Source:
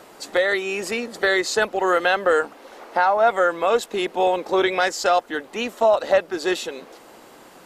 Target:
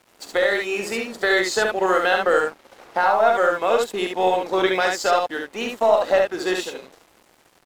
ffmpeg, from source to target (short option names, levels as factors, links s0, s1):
-af "aeval=exprs='0.531*(cos(1*acos(clip(val(0)/0.531,-1,1)))-cos(1*PI/2))+0.00596*(cos(4*acos(clip(val(0)/0.531,-1,1)))-cos(4*PI/2))+0.00335*(cos(7*acos(clip(val(0)/0.531,-1,1)))-cos(7*PI/2))':c=same,aecho=1:1:44|70:0.316|0.668,aeval=exprs='sgn(val(0))*max(abs(val(0))-0.00708,0)':c=same,volume=0.891"